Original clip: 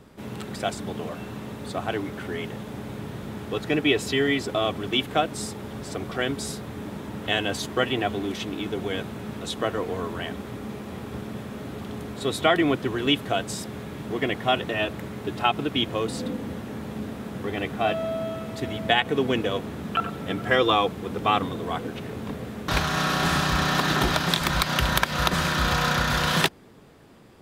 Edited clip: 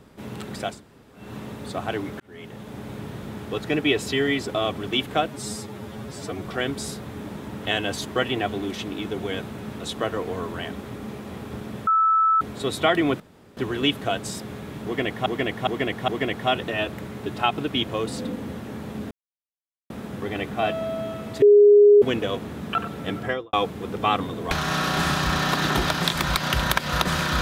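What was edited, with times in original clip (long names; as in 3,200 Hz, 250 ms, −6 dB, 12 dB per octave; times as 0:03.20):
0:00.73–0:01.23: fill with room tone, crossfade 0.24 s
0:02.20–0:03.07: fade in equal-power
0:05.28–0:06.06: time-stretch 1.5×
0:11.48–0:12.02: beep over 1,310 Hz −15.5 dBFS
0:12.81: splice in room tone 0.37 s
0:14.09–0:14.50: repeat, 4 plays
0:17.12: splice in silence 0.79 s
0:18.64–0:19.24: beep over 412 Hz −9 dBFS
0:20.38–0:20.75: fade out and dull
0:21.73–0:22.77: remove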